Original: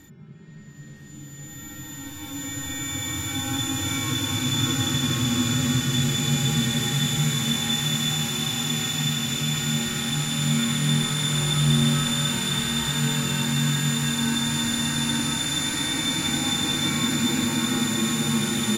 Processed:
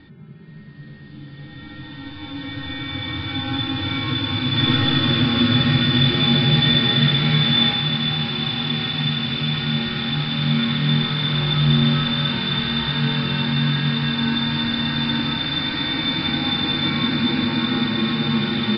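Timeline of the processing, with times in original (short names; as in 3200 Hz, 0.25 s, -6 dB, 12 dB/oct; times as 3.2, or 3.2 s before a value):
4.5–7.67 reverb throw, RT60 0.84 s, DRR -2 dB
whole clip: steep low-pass 4800 Hz 96 dB/oct; gain +3.5 dB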